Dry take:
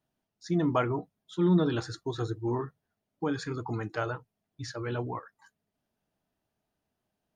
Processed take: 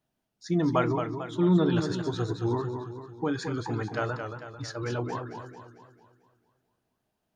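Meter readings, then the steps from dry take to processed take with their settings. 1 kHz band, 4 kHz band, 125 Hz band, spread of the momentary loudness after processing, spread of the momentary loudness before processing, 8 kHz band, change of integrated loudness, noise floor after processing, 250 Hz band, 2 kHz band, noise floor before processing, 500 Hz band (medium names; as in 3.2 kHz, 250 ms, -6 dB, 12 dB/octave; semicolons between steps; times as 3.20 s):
+2.5 dB, +2.5 dB, +2.5 dB, 15 LU, 15 LU, +2.5 dB, +2.0 dB, -81 dBFS, +2.5 dB, +2.5 dB, -85 dBFS, +2.5 dB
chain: modulated delay 223 ms, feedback 48%, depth 105 cents, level -7 dB; trim +1.5 dB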